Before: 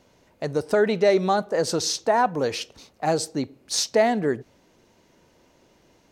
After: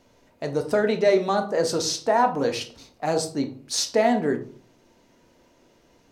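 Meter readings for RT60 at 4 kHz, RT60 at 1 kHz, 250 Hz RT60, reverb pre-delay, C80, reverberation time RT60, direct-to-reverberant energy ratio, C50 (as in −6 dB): 0.30 s, 0.40 s, 0.55 s, 3 ms, 17.0 dB, 0.45 s, 5.0 dB, 12.5 dB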